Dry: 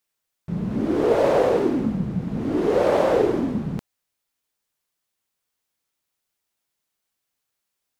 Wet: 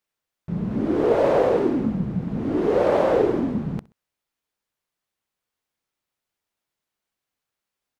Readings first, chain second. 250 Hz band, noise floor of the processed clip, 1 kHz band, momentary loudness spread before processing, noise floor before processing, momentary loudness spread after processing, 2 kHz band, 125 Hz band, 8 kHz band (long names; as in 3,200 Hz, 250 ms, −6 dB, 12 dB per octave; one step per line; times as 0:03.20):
0.0 dB, below −85 dBFS, −0.5 dB, 10 LU, −81 dBFS, 10 LU, −1.0 dB, 0.0 dB, can't be measured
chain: high-shelf EQ 4,200 Hz −8.5 dB
repeating echo 64 ms, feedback 32%, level −22 dB